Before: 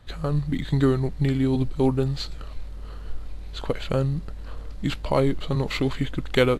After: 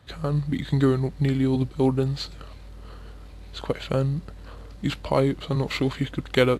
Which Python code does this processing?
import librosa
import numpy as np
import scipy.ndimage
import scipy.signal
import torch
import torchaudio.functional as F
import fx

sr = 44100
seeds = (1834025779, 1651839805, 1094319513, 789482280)

y = scipy.signal.sosfilt(scipy.signal.butter(4, 56.0, 'highpass', fs=sr, output='sos'), x)